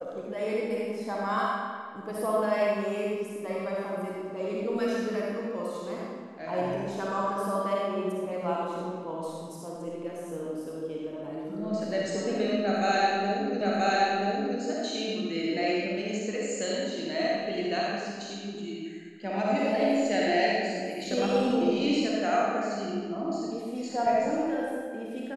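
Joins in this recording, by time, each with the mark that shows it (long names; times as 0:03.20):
0:13.61: the same again, the last 0.98 s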